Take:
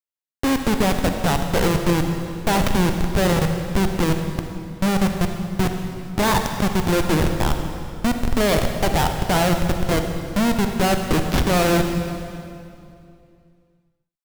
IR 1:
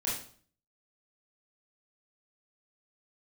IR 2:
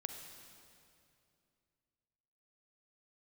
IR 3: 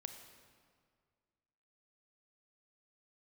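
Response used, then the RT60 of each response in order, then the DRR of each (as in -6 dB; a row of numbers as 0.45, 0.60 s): 2; 0.50, 2.6, 2.0 s; -7.0, 5.0, 6.5 dB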